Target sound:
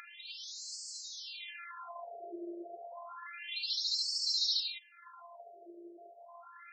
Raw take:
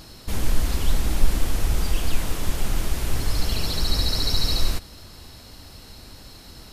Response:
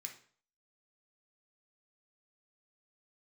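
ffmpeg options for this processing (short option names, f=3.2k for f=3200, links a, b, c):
-af "acompressor=mode=upward:threshold=-25dB:ratio=2.5,afftfilt=real='hypot(re,im)*cos(PI*b)':imag='0':win_size=512:overlap=0.75,afftfilt=real='re*between(b*sr/1024,460*pow(6000/460,0.5+0.5*sin(2*PI*0.3*pts/sr))/1.41,460*pow(6000/460,0.5+0.5*sin(2*PI*0.3*pts/sr))*1.41)':imag='im*between(b*sr/1024,460*pow(6000/460,0.5+0.5*sin(2*PI*0.3*pts/sr))/1.41,460*pow(6000/460,0.5+0.5*sin(2*PI*0.3*pts/sr))*1.41)':win_size=1024:overlap=0.75"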